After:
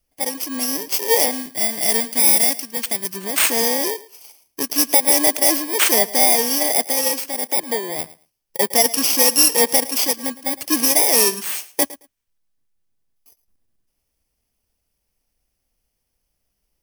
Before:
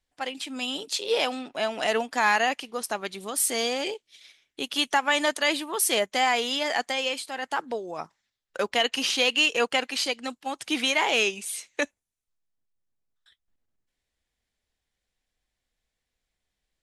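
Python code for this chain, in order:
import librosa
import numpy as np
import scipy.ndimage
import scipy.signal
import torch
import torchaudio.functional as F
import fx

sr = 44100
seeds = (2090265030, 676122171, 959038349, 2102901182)

y = fx.bit_reversed(x, sr, seeds[0], block=32)
y = fx.peak_eq(y, sr, hz=650.0, db=-8.0, octaves=2.1, at=(1.31, 3.13))
y = fx.echo_feedback(y, sr, ms=110, feedback_pct=16, wet_db=-18.5)
y = y * librosa.db_to_amplitude(8.5)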